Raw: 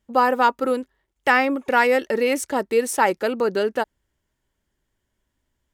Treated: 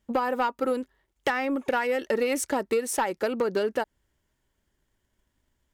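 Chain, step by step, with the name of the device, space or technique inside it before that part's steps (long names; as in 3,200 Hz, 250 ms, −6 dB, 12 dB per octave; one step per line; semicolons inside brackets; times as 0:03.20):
drum-bus smash (transient designer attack +6 dB, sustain +1 dB; downward compressor 10 to 1, threshold −20 dBFS, peak gain reduction 13 dB; soft clipping −16 dBFS, distortion −17 dB)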